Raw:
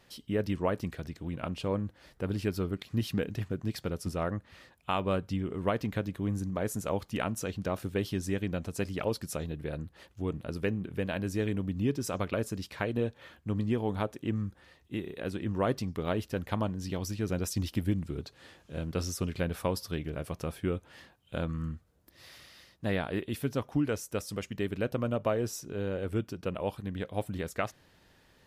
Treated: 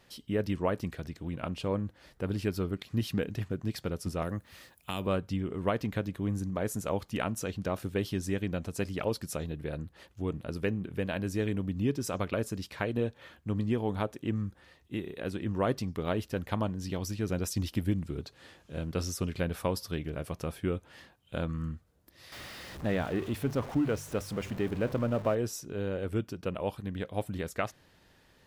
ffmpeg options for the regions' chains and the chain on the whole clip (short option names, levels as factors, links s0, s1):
-filter_complex "[0:a]asettb=1/sr,asplit=3[s0][s1][s2];[s0]atrim=end=4.224[s3];[s1]atrim=start=4.22:end=5.07,asetpts=PTS-STARTPTS,afade=t=in:d=0.004:c=qsin,afade=t=out:st=0.846:d=0.004:c=qsin,acrossover=split=400|3000[s4][s5][s6];[s5]acompressor=threshold=0.0178:ratio=6:attack=3.2:release=140:knee=2.83:detection=peak[s7];[s4][s7][s6]amix=inputs=3:normalize=0,aemphasis=mode=production:type=50fm[s8];[s2]atrim=start=5.066[s9];[s3][s8]acrossfade=d=0.004:c1=hsin:c2=qsin[s10];[s10][s9]acrossfade=d=0.004:c1=qsin:c2=hsin,asettb=1/sr,asplit=3[s11][s12][s13];[s11]atrim=end=22.324[s14];[s12]atrim=start=22.32:end=25.35,asetpts=PTS-STARTPTS,afade=t=in:d=0.004:c=qsin,afade=t=out:st=3.026:d=0.004:c=qsin,aeval=exprs='val(0)+0.5*0.015*sgn(val(0))':c=same,highshelf=f=3000:g=-9.5,bandreject=f=49.05:t=h:w=4,bandreject=f=98.1:t=h:w=4,bandreject=f=147.15:t=h:w=4[s15];[s13]atrim=start=25.346[s16];[s14][s15]acrossfade=d=0.004:c1=hsin:c2=qsin[s17];[s17][s16]acrossfade=d=0.004:c1=qsin:c2=hsin"